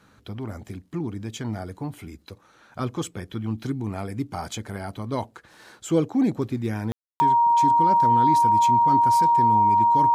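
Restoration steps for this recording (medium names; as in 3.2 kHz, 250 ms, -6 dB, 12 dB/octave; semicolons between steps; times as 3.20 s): band-stop 940 Hz, Q 30; room tone fill 6.92–7.20 s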